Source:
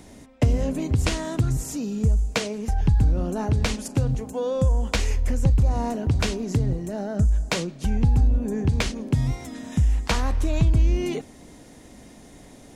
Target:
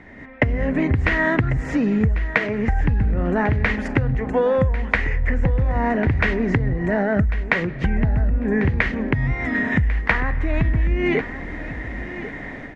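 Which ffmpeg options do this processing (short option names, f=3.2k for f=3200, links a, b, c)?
-filter_complex "[0:a]acompressor=threshold=-27dB:ratio=12,lowpass=f=1.9k:t=q:w=6.8,dynaudnorm=f=160:g=3:m=11.5dB,asplit=2[a][b];[b]aecho=0:1:1096|2192:0.2|0.0339[c];[a][c]amix=inputs=2:normalize=0"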